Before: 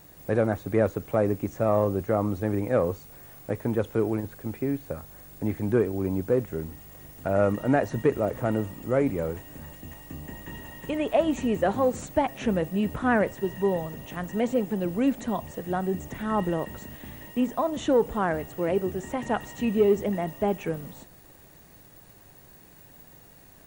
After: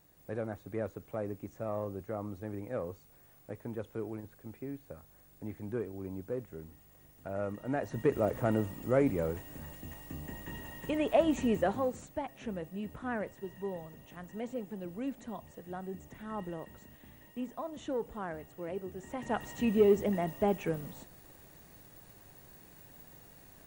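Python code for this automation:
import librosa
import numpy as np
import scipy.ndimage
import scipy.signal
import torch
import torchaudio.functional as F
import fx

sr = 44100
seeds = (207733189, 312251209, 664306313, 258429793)

y = fx.gain(x, sr, db=fx.line((7.62, -13.5), (8.21, -3.5), (11.52, -3.5), (12.13, -13.5), (18.89, -13.5), (19.51, -3.5)))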